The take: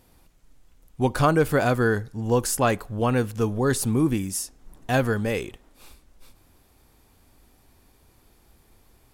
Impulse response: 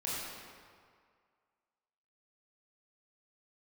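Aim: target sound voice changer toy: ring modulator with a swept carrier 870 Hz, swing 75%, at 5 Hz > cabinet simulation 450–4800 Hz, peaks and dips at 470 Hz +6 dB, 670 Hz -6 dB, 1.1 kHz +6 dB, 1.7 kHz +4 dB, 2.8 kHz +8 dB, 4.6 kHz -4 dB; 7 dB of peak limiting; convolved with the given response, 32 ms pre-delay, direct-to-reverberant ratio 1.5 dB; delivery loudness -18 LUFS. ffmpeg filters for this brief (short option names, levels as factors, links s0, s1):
-filter_complex "[0:a]alimiter=limit=0.168:level=0:latency=1,asplit=2[s0][s1];[1:a]atrim=start_sample=2205,adelay=32[s2];[s1][s2]afir=irnorm=-1:irlink=0,volume=0.531[s3];[s0][s3]amix=inputs=2:normalize=0,aeval=exprs='val(0)*sin(2*PI*870*n/s+870*0.75/5*sin(2*PI*5*n/s))':c=same,highpass=450,equalizer=f=470:t=q:w=4:g=6,equalizer=f=670:t=q:w=4:g=-6,equalizer=f=1100:t=q:w=4:g=6,equalizer=f=1700:t=q:w=4:g=4,equalizer=f=2800:t=q:w=4:g=8,equalizer=f=4600:t=q:w=4:g=-4,lowpass=f=4800:w=0.5412,lowpass=f=4800:w=1.3066,volume=2.24"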